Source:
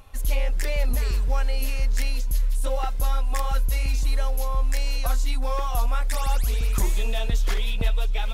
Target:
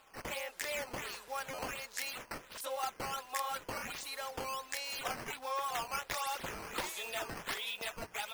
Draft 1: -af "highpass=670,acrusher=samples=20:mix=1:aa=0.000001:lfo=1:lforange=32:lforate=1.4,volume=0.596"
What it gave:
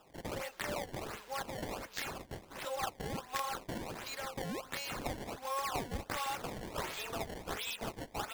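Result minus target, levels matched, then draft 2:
decimation with a swept rate: distortion +8 dB
-af "highpass=670,acrusher=samples=7:mix=1:aa=0.000001:lfo=1:lforange=11.2:lforate=1.4,volume=0.596"

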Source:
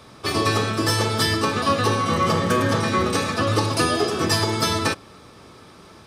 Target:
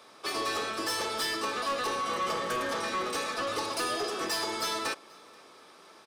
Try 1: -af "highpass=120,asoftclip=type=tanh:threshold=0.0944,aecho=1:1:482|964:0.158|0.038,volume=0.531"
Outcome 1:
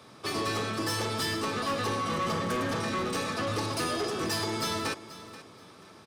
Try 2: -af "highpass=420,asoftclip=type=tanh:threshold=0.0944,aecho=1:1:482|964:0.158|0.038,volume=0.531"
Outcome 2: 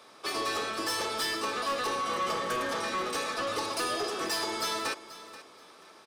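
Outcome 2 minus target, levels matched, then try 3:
echo-to-direct +11 dB
-af "highpass=420,asoftclip=type=tanh:threshold=0.0944,aecho=1:1:482|964:0.0447|0.0107,volume=0.531"

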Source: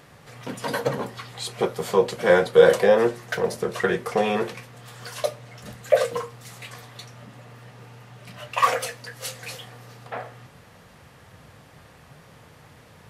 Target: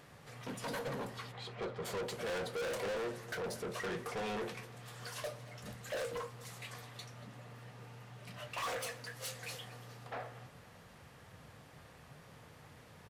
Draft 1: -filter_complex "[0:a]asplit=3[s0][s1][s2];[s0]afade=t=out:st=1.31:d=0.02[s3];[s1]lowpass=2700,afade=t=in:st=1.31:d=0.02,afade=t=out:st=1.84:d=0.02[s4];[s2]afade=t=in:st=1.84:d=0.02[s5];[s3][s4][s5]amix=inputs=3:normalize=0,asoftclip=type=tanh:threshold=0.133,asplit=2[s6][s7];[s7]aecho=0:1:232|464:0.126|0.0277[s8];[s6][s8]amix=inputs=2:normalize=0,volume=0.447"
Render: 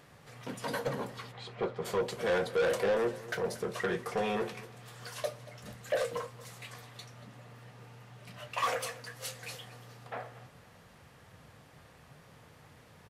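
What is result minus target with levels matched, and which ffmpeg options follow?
saturation: distortion -6 dB
-filter_complex "[0:a]asplit=3[s0][s1][s2];[s0]afade=t=out:st=1.31:d=0.02[s3];[s1]lowpass=2700,afade=t=in:st=1.31:d=0.02,afade=t=out:st=1.84:d=0.02[s4];[s2]afade=t=in:st=1.84:d=0.02[s5];[s3][s4][s5]amix=inputs=3:normalize=0,asoftclip=type=tanh:threshold=0.0355,asplit=2[s6][s7];[s7]aecho=0:1:232|464:0.126|0.0277[s8];[s6][s8]amix=inputs=2:normalize=0,volume=0.447"

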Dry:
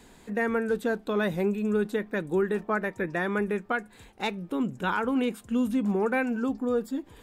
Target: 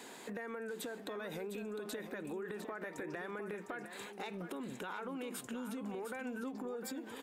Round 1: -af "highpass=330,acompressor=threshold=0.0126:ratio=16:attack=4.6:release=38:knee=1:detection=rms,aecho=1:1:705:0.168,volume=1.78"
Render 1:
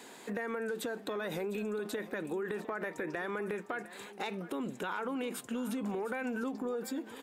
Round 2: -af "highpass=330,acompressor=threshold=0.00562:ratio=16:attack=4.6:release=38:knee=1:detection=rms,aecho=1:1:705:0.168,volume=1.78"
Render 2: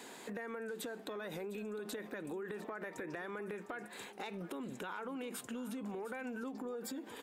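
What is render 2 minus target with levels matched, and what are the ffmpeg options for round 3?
echo-to-direct -6.5 dB
-af "highpass=330,acompressor=threshold=0.00562:ratio=16:attack=4.6:release=38:knee=1:detection=rms,aecho=1:1:705:0.355,volume=1.78"

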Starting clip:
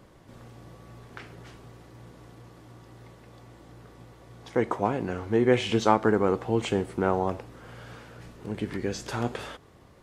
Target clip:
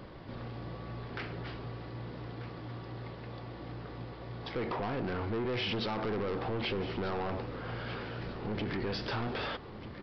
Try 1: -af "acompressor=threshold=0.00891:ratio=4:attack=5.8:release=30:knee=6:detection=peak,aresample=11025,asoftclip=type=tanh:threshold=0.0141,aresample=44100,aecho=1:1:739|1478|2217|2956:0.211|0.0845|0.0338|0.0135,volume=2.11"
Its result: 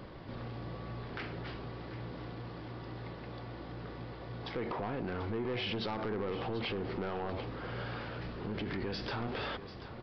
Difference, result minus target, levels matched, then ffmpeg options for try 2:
echo 501 ms early; compression: peak gain reduction +5.5 dB
-af "acompressor=threshold=0.0211:ratio=4:attack=5.8:release=30:knee=6:detection=peak,aresample=11025,asoftclip=type=tanh:threshold=0.0141,aresample=44100,aecho=1:1:1240|2480|3720|4960:0.211|0.0845|0.0338|0.0135,volume=2.11"

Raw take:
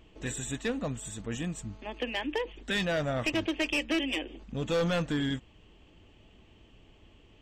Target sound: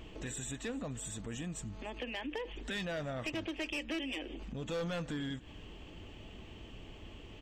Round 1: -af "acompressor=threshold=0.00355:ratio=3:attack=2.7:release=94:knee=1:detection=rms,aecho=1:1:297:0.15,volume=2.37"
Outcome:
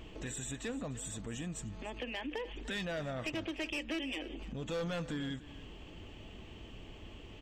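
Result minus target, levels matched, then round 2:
echo-to-direct +6 dB
-af "acompressor=threshold=0.00355:ratio=3:attack=2.7:release=94:knee=1:detection=rms,aecho=1:1:297:0.075,volume=2.37"

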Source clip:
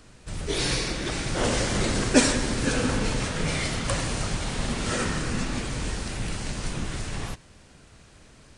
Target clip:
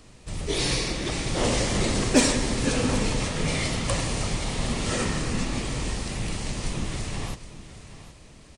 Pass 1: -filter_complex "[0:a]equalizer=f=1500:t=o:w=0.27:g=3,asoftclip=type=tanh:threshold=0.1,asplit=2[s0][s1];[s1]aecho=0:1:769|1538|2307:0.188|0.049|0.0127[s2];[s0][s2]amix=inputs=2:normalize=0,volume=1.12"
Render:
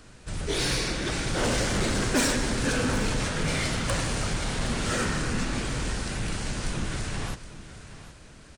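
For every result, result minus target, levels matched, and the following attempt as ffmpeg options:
saturation: distortion +12 dB; 2 kHz band +3.0 dB
-filter_complex "[0:a]equalizer=f=1500:t=o:w=0.27:g=3,asoftclip=type=tanh:threshold=0.398,asplit=2[s0][s1];[s1]aecho=0:1:769|1538|2307:0.188|0.049|0.0127[s2];[s0][s2]amix=inputs=2:normalize=0,volume=1.12"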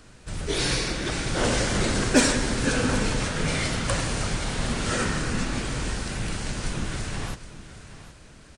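2 kHz band +2.5 dB
-filter_complex "[0:a]equalizer=f=1500:t=o:w=0.27:g=-8.5,asoftclip=type=tanh:threshold=0.398,asplit=2[s0][s1];[s1]aecho=0:1:769|1538|2307:0.188|0.049|0.0127[s2];[s0][s2]amix=inputs=2:normalize=0,volume=1.12"

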